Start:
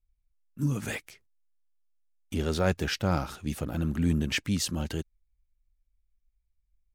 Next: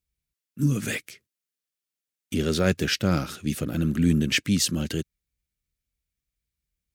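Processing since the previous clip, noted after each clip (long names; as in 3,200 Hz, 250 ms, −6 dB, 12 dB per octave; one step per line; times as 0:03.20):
high-pass filter 120 Hz 12 dB per octave
parametric band 860 Hz −13 dB 0.93 octaves
level +7 dB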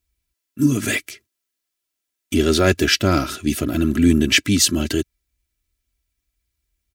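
comb filter 3 ms, depth 69%
level +6.5 dB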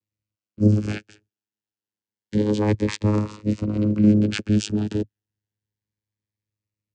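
channel vocoder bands 8, saw 105 Hz
phaser whose notches keep moving one way rising 0.29 Hz
level −1 dB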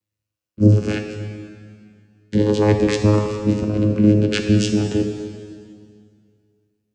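dense smooth reverb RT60 2.2 s, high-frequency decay 0.9×, DRR 4 dB
level +4 dB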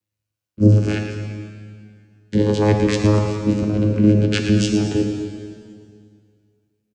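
repeating echo 113 ms, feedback 50%, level −10 dB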